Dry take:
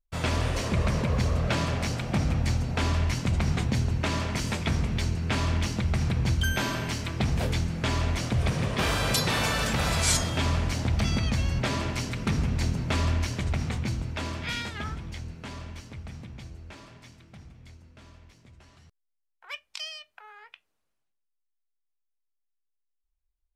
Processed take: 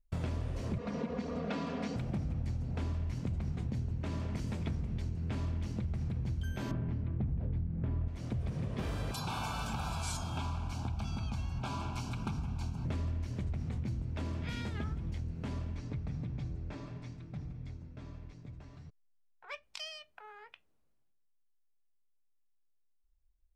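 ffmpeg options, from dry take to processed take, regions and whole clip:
ffmpeg -i in.wav -filter_complex "[0:a]asettb=1/sr,asplit=3[link_01][link_02][link_03];[link_01]atrim=end=0.784[link_04];[link_02]atrim=start=0.78:end=1.96,asetpts=PTS-STARTPTS,afade=type=in:duration=0.004:curve=qsin,afade=type=out:start_time=1.176:duration=0.004:curve=qsin,highpass=230,lowpass=5300,aecho=1:1:4.2:0.97,atrim=end_sample=52038[link_05];[link_03]atrim=start=1.956[link_06];[link_04][link_05]acrossfade=duration=0.004:curve1=hsin:curve2=qsin[link_07];[link_07][link_06]acrossfade=duration=0.004:curve1=qsin:curve2=hsin,asettb=1/sr,asplit=3[link_08][link_09][link_10];[link_08]atrim=end=6.714[link_11];[link_09]atrim=start=6.71:end=8.08,asetpts=PTS-STARTPTS,afade=type=in:duration=0.004:curve=qsin,afade=type=out:start_time=1.366:duration=0.004:curve=qsin,lowpass=2000,lowshelf=frequency=340:gain=9.5[link_12];[link_10]atrim=start=8.076[link_13];[link_11][link_12]acrossfade=duration=0.004:curve1=hsin:curve2=qsin[link_14];[link_14][link_13]acrossfade=duration=0.004:curve1=qsin:curve2=hsin,asettb=1/sr,asplit=3[link_15][link_16][link_17];[link_15]atrim=end=9.114[link_18];[link_16]atrim=start=9.11:end=12.85,asetpts=PTS-STARTPTS,afade=type=in:duration=0.004:curve=qsin,afade=type=out:start_time=3.736:duration=0.004:curve=qsin,asuperstop=centerf=1900:order=8:qfactor=3.5,lowshelf=frequency=660:width_type=q:width=3:gain=-7[link_19];[link_17]atrim=start=12.846[link_20];[link_18][link_19]acrossfade=duration=0.004:curve1=hsin:curve2=qsin[link_21];[link_21][link_20]acrossfade=duration=0.004:curve1=qsin:curve2=hsin,asettb=1/sr,asplit=3[link_22][link_23][link_24];[link_22]atrim=end=15.754[link_25];[link_23]atrim=start=15.75:end=19.63,asetpts=PTS-STARTPTS,afade=type=in:duration=0.004:curve=qsin,afade=type=out:start_time=3.876:duration=0.004:curve=qsin,lowpass=6300,bandreject=frequency=3000:width=13,aecho=1:1:6.8:0.39,atrim=end_sample=171108[link_26];[link_24]atrim=start=19.626[link_27];[link_25][link_26]acrossfade=duration=0.004:curve1=hsin:curve2=qsin[link_28];[link_28][link_27]acrossfade=duration=0.004:curve1=qsin:curve2=hsin,tiltshelf=frequency=640:gain=7,acompressor=threshold=-34dB:ratio=6" out.wav

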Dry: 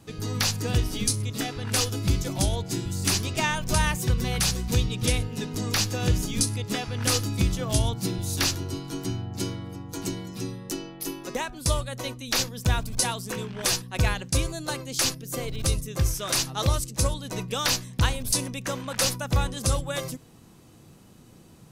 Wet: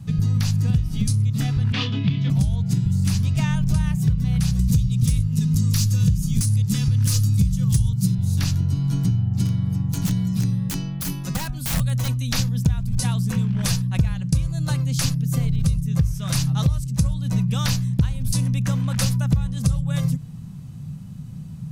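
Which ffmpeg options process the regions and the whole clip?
ffmpeg -i in.wav -filter_complex "[0:a]asettb=1/sr,asplit=3[link_01][link_02][link_03];[link_01]atrim=end=1.724[link_04];[link_02]atrim=start=1.72:end=2.3,asetpts=PTS-STARTPTS,afade=type=in:duration=0.004:curve=qsin,afade=type=out:start_time=0.576:duration=0.004:curve=qsin,acontrast=39,highpass=frequency=180:width=0.5412,highpass=frequency=180:width=1.3066,equalizer=frequency=190:width_type=q:width=4:gain=-9,equalizer=frequency=350:width_type=q:width=4:gain=-5,equalizer=frequency=540:width_type=q:width=4:gain=-9,equalizer=frequency=790:width_type=q:width=4:gain=-8,equalizer=frequency=1400:width_type=q:width=4:gain=-7,equalizer=frequency=3300:width_type=q:width=4:gain=5,lowpass=frequency=3400:width=0.5412,lowpass=frequency=3400:width=1.3066,asplit=2[link_05][link_06];[link_06]adelay=29,volume=-7dB[link_07];[link_05][link_07]amix=inputs=2:normalize=0,atrim=end_sample=25578[link_08];[link_03]atrim=start=2.296[link_09];[link_04][link_08]acrossfade=duration=0.004:curve1=hsin:curve2=qsin[link_10];[link_10][link_09]acrossfade=duration=0.004:curve1=qsin:curve2=hsin,asettb=1/sr,asplit=3[link_11][link_12][link_13];[link_11]atrim=end=4.594[link_14];[link_12]atrim=start=4.59:end=8.15,asetpts=PTS-STARTPTS,afade=type=in:duration=0.004:curve=qsin,afade=type=out:start_time=3.556:duration=0.004:curve=qsin,bass=frequency=250:gain=6,treble=frequency=4000:gain=15,volume=9dB,asoftclip=hard,volume=-9dB,asuperstop=centerf=680:order=4:qfactor=2.6[link_15];[link_13]atrim=start=8.146[link_16];[link_14][link_15]acrossfade=duration=0.004:curve1=hsin:curve2=qsin[link_17];[link_17][link_16]acrossfade=duration=0.004:curve1=qsin:curve2=hsin,asettb=1/sr,asplit=3[link_18][link_19][link_20];[link_18]atrim=end=9.454[link_21];[link_19]atrim=start=9.45:end=12.27,asetpts=PTS-STARTPTS,afade=type=in:duration=0.004:curve=qsin,afade=type=out:start_time=2.816:duration=0.004:curve=qsin,highshelf=frequency=4300:gain=7,aeval=exprs='(mod(11.9*val(0)+1,2)-1)/11.9':channel_layout=same[link_22];[link_20]atrim=start=12.266[link_23];[link_21][link_22]acrossfade=duration=0.004:curve1=hsin:curve2=qsin[link_24];[link_24][link_23]acrossfade=duration=0.004:curve1=qsin:curve2=hsin,lowshelf=frequency=240:width_type=q:width=3:gain=14,acompressor=threshold=-17dB:ratio=6" out.wav

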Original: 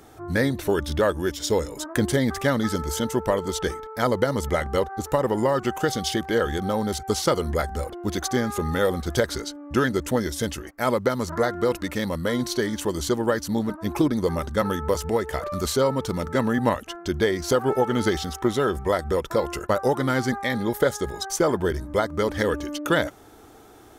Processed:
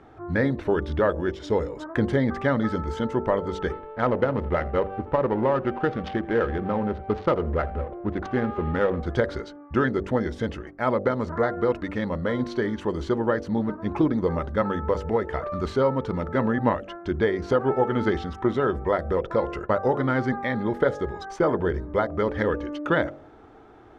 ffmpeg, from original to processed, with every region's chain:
ffmpeg -i in.wav -filter_complex "[0:a]asettb=1/sr,asplit=3[link_01][link_02][link_03];[link_01]atrim=end=3.724[link_04];[link_02]atrim=start=3.72:end=9.03,asetpts=PTS-STARTPTS,afade=type=in:duration=0.004:curve=qsin,afade=type=out:start_time=5.306:duration=0.004:curve=qsin,aeval=exprs='val(0)+0.00398*sin(2*PI*590*n/s)':channel_layout=same,adynamicsmooth=sensitivity=3:basefreq=610,aecho=1:1:81:0.075,atrim=end_sample=234171[link_05];[link_03]atrim=start=9.026[link_06];[link_04][link_05]acrossfade=duration=0.004:curve1=hsin:curve2=qsin[link_07];[link_07][link_06]acrossfade=duration=0.004:curve1=qsin:curve2=hsin,lowpass=2100,bandreject=frequency=48.24:width_type=h:width=4,bandreject=frequency=96.48:width_type=h:width=4,bandreject=frequency=144.72:width_type=h:width=4,bandreject=frequency=192.96:width_type=h:width=4,bandreject=frequency=241.2:width_type=h:width=4,bandreject=frequency=289.44:width_type=h:width=4,bandreject=frequency=337.68:width_type=h:width=4,bandreject=frequency=385.92:width_type=h:width=4,bandreject=frequency=434.16:width_type=h:width=4,bandreject=frequency=482.4:width_type=h:width=4,bandreject=frequency=530.64:width_type=h:width=4,bandreject=frequency=578.88:width_type=h:width=4,bandreject=frequency=627.12:width_type=h:width=4,bandreject=frequency=675.36:width_type=h:width=4,bandreject=frequency=723.6:width_type=h:width=4,bandreject=frequency=771.84:width_type=h:width=4" out.wav

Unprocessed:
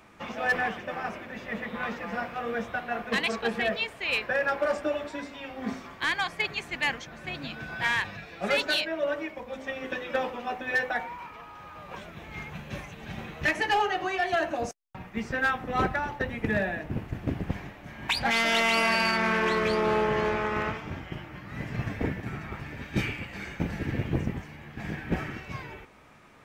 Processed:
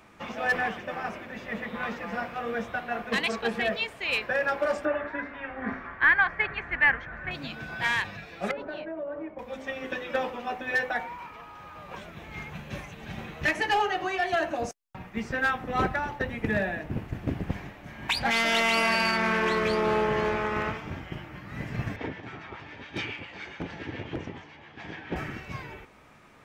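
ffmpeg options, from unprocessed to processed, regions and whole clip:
ffmpeg -i in.wav -filter_complex "[0:a]asettb=1/sr,asplit=3[link_01][link_02][link_03];[link_01]atrim=end=4.854[link_04];[link_02]atrim=start=4.85:end=7.31,asetpts=PTS-STARTPTS,afade=type=in:duration=0.004:curve=qsin,afade=type=out:start_time=2.456:duration=0.004:curve=qsin,lowpass=frequency=1700:width_type=q:width=3.2,asubboost=boost=6:cutoff=89[link_05];[link_03]atrim=start=7.306[link_06];[link_04][link_05]acrossfade=duration=0.004:curve1=hsin:curve2=qsin[link_07];[link_07][link_06]acrossfade=duration=0.004:curve1=qsin:curve2=hsin,asettb=1/sr,asplit=3[link_08][link_09][link_10];[link_08]atrim=end=8.514[link_11];[link_09]atrim=start=8.51:end=9.39,asetpts=PTS-STARTPTS,afade=type=in:duration=0.004:curve=qsin,afade=type=out:start_time=0.876:duration=0.004:curve=qsin,lowpass=1000,acompressor=threshold=-31dB:ratio=6:attack=3.2:release=140:knee=1:detection=peak[link_12];[link_10]atrim=start=9.386[link_13];[link_11][link_12]acrossfade=duration=0.004:curve1=hsin:curve2=qsin[link_14];[link_14][link_13]acrossfade=duration=0.004:curve1=qsin:curve2=hsin,asettb=1/sr,asplit=3[link_15][link_16][link_17];[link_15]atrim=end=21.964[link_18];[link_16]atrim=start=21.96:end=25.16,asetpts=PTS-STARTPTS,afade=type=in:duration=0.004:curve=qsin,afade=type=out:start_time=3.196:duration=0.004:curve=qsin,highpass=120,equalizer=frequency=140:width_type=q:width=4:gain=-8,equalizer=frequency=210:width_type=q:width=4:gain=-9,equalizer=frequency=920:width_type=q:width=4:gain=4,equalizer=frequency=3300:width_type=q:width=4:gain=6,lowpass=frequency=6100:width=0.5412,lowpass=frequency=6100:width=1.3066,acrossover=split=900[link_19][link_20];[link_19]aeval=exprs='val(0)*(1-0.5/2+0.5/2*cos(2*PI*7.2*n/s))':channel_layout=same[link_21];[link_20]aeval=exprs='val(0)*(1-0.5/2-0.5/2*cos(2*PI*7.2*n/s))':channel_layout=same[link_22];[link_21][link_22]amix=inputs=2:normalize=0,aeval=exprs='0.0841*(abs(mod(val(0)/0.0841+3,4)-2)-1)':channel_layout=same[link_23];[link_17]atrim=start=25.156[link_24];[link_18][link_23]acrossfade=duration=0.004:curve1=hsin:curve2=qsin[link_25];[link_25][link_24]acrossfade=duration=0.004:curve1=qsin:curve2=hsin" out.wav

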